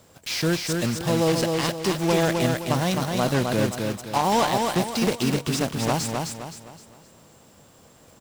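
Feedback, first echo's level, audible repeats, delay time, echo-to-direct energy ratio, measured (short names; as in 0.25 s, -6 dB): 38%, -4.0 dB, 4, 0.26 s, -3.5 dB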